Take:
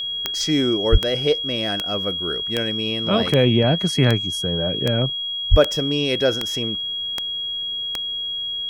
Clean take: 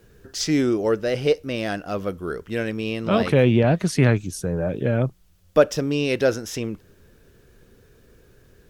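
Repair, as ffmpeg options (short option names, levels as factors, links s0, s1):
-filter_complex "[0:a]adeclick=t=4,bandreject=f=3300:w=30,asplit=3[s0][s1][s2];[s0]afade=t=out:st=0.91:d=0.02[s3];[s1]highpass=f=140:w=0.5412,highpass=f=140:w=1.3066,afade=t=in:st=0.91:d=0.02,afade=t=out:st=1.03:d=0.02[s4];[s2]afade=t=in:st=1.03:d=0.02[s5];[s3][s4][s5]amix=inputs=3:normalize=0,asplit=3[s6][s7][s8];[s6]afade=t=out:st=5.5:d=0.02[s9];[s7]highpass=f=140:w=0.5412,highpass=f=140:w=1.3066,afade=t=in:st=5.5:d=0.02,afade=t=out:st=5.62:d=0.02[s10];[s8]afade=t=in:st=5.62:d=0.02[s11];[s9][s10][s11]amix=inputs=3:normalize=0"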